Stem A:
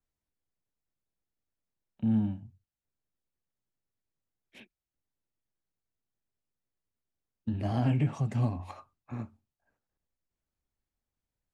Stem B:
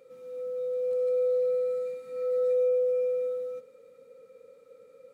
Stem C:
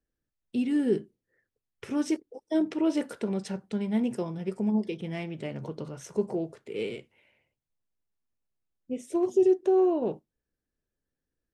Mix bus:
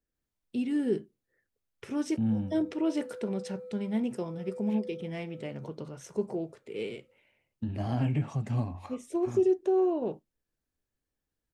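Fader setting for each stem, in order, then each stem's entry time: −1.5, −17.0, −3.0 decibels; 0.15, 2.05, 0.00 seconds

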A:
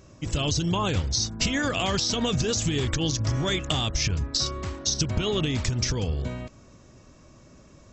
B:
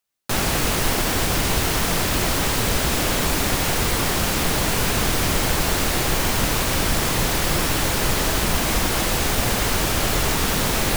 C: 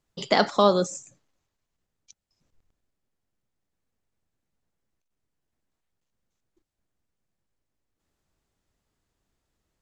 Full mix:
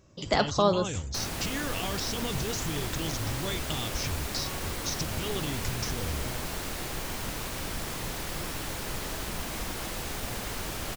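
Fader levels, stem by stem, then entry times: −8.5, −14.0, −4.5 decibels; 0.00, 0.85, 0.00 seconds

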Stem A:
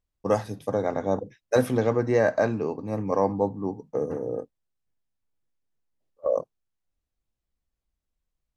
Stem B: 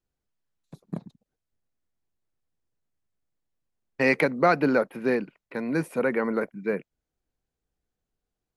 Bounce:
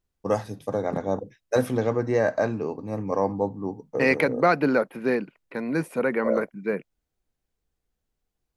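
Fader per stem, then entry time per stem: −1.0, +0.5 decibels; 0.00, 0.00 seconds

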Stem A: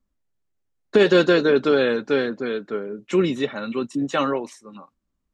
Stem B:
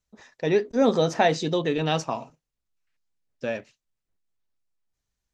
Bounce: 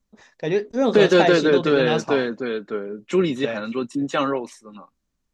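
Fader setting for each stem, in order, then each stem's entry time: 0.0, 0.0 decibels; 0.00, 0.00 seconds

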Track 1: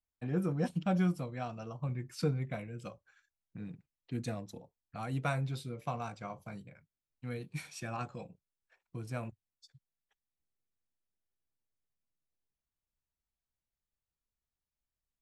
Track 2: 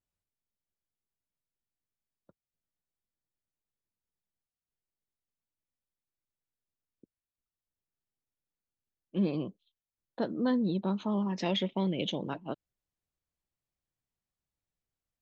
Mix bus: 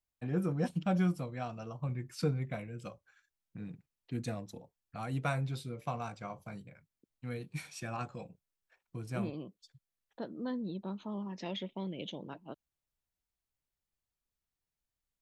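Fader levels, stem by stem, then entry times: 0.0, −9.0 decibels; 0.00, 0.00 seconds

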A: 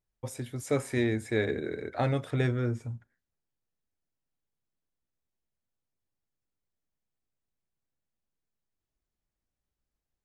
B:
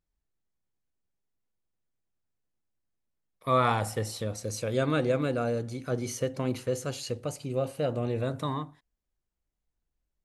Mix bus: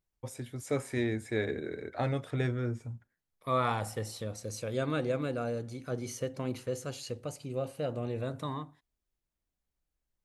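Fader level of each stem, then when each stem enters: −3.5, −5.0 decibels; 0.00, 0.00 seconds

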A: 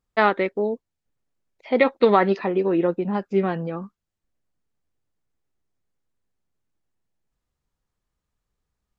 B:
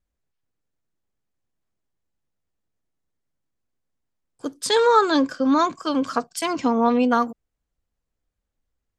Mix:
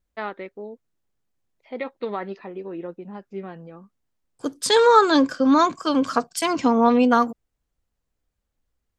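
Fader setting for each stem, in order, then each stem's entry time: −12.5, +2.0 decibels; 0.00, 0.00 seconds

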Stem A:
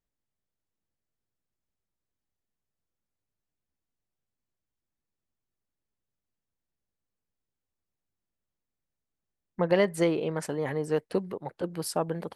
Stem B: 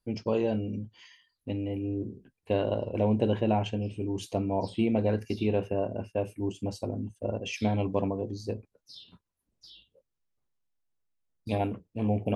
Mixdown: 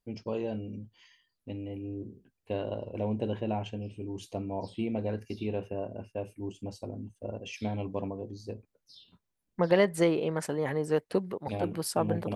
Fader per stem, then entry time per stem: 0.0, −6.0 decibels; 0.00, 0.00 seconds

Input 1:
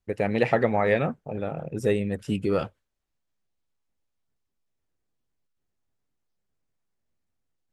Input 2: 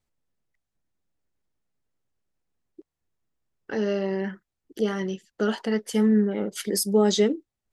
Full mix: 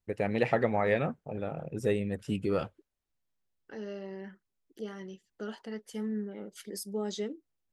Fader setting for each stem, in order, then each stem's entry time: −5.0, −14.5 decibels; 0.00, 0.00 seconds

